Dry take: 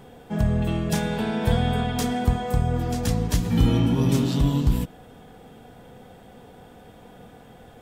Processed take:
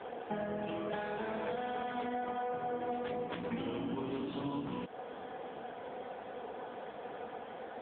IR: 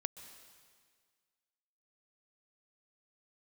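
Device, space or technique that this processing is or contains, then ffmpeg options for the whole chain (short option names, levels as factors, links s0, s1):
voicemail: -af "highpass=420,lowpass=2600,acompressor=threshold=0.00794:ratio=8,volume=2.66" -ar 8000 -c:a libopencore_amrnb -b:a 6700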